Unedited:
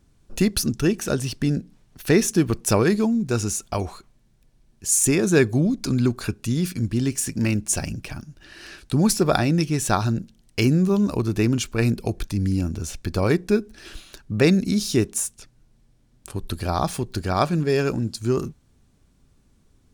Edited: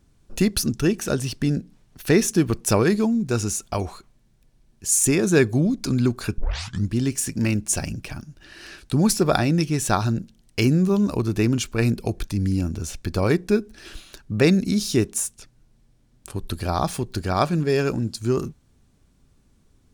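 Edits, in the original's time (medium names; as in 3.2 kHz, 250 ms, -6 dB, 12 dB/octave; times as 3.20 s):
6.38 s: tape start 0.50 s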